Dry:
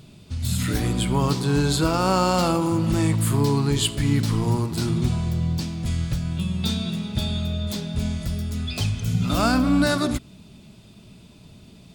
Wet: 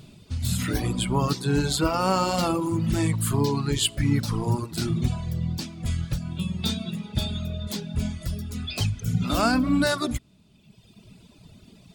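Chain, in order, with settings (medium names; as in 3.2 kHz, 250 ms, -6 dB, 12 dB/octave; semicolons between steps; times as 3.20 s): reverb removal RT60 1.4 s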